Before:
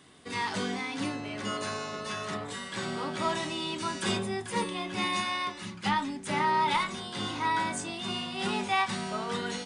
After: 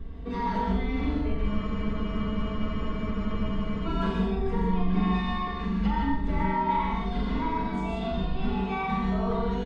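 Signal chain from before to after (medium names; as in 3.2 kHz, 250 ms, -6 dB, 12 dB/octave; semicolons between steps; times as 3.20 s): octave divider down 2 oct, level -6 dB; wind noise 82 Hz -43 dBFS; bass shelf 450 Hz +7.5 dB; comb 4.4 ms, depth 95%; compression, threshold -25 dBFS, peak gain reduction 10.5 dB; tape spacing loss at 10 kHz 38 dB; flutter echo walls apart 7.4 m, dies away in 0.55 s; gated-style reverb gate 180 ms rising, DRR 0 dB; spectral freeze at 1.50 s, 2.37 s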